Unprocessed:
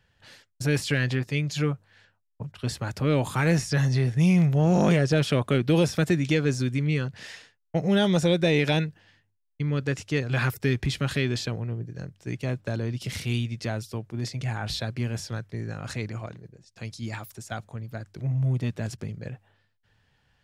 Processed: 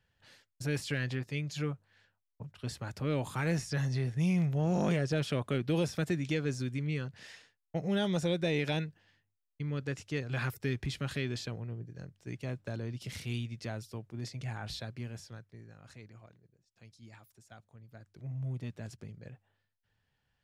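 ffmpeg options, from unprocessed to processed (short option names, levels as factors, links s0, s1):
-af "volume=0.841,afade=t=out:st=14.57:d=1.11:silence=0.298538,afade=t=in:st=17.71:d=0.71:silence=0.421697"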